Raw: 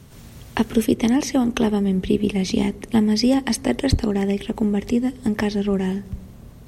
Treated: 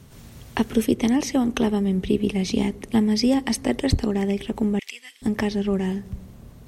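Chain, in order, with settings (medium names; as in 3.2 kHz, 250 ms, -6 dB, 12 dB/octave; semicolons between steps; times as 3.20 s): 4.79–5.22 s: resonant high-pass 2.4 kHz, resonance Q 2.1; trim -2 dB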